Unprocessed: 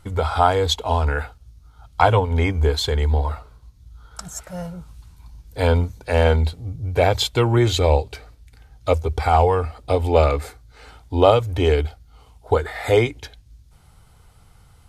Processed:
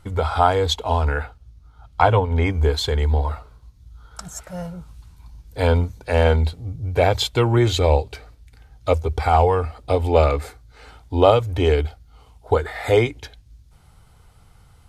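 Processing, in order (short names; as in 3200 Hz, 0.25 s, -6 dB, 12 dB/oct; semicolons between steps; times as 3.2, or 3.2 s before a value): high shelf 5100 Hz -3.5 dB, from 1.18 s -10 dB, from 2.46 s -2.5 dB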